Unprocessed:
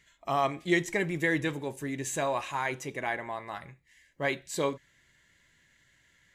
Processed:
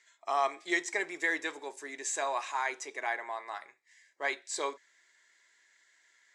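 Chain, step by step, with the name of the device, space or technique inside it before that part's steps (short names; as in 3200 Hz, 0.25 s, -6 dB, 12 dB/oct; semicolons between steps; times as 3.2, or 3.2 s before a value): phone speaker on a table (speaker cabinet 430–8700 Hz, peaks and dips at 530 Hz -9 dB, 2900 Hz -7 dB, 5200 Hz +4 dB, 7700 Hz +3 dB)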